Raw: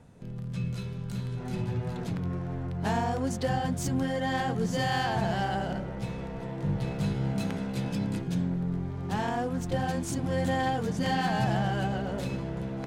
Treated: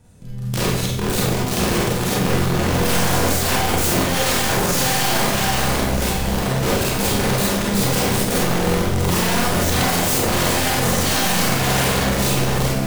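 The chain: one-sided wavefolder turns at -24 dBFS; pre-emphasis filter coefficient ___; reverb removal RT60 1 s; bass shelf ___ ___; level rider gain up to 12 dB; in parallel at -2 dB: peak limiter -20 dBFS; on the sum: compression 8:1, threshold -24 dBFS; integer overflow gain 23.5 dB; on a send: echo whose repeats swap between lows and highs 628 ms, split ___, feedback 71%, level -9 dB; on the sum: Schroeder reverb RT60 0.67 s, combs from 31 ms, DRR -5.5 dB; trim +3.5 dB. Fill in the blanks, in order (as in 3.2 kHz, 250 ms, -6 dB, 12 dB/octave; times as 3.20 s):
0.8, 150 Hz, +11.5 dB, 920 Hz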